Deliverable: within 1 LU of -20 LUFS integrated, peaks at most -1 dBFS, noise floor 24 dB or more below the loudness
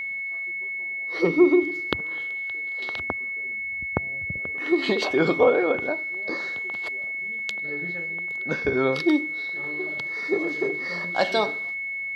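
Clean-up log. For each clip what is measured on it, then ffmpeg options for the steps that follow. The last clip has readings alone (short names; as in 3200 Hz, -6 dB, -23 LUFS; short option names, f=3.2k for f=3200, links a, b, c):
steady tone 2200 Hz; tone level -28 dBFS; loudness -25.0 LUFS; peak -3.0 dBFS; loudness target -20.0 LUFS
-> -af "bandreject=f=2.2k:w=30"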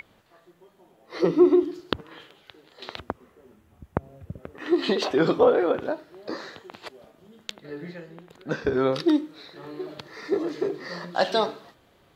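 steady tone none; loudness -25.0 LUFS; peak -3.5 dBFS; loudness target -20.0 LUFS
-> -af "volume=5dB,alimiter=limit=-1dB:level=0:latency=1"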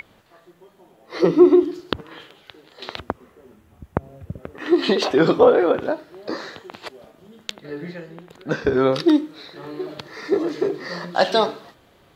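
loudness -20.0 LUFS; peak -1.0 dBFS; noise floor -56 dBFS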